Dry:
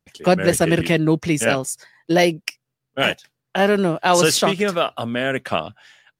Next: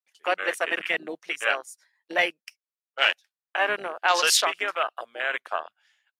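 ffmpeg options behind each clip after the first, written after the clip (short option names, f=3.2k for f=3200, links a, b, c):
-af "highpass=1k,afwtdn=0.0447"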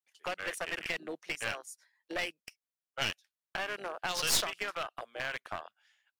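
-filter_complex "[0:a]acrossover=split=200|3000[a][b][c];[b]acompressor=threshold=-29dB:ratio=10[d];[a][d][c]amix=inputs=3:normalize=0,aeval=exprs='clip(val(0),-1,0.0299)':c=same,volume=-3.5dB"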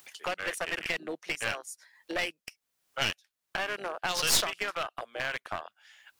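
-af "acompressor=mode=upward:threshold=-38dB:ratio=2.5,volume=3.5dB"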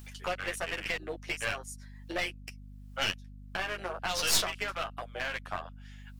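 -af "flanger=delay=9.8:depth=1.5:regen=-3:speed=1.2:shape=sinusoidal,aeval=exprs='val(0)+0.00398*(sin(2*PI*50*n/s)+sin(2*PI*2*50*n/s)/2+sin(2*PI*3*50*n/s)/3+sin(2*PI*4*50*n/s)/4+sin(2*PI*5*50*n/s)/5)':c=same,volume=1.5dB"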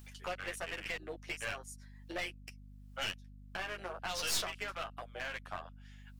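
-af "asoftclip=type=tanh:threshold=-18dB,volume=-5.5dB"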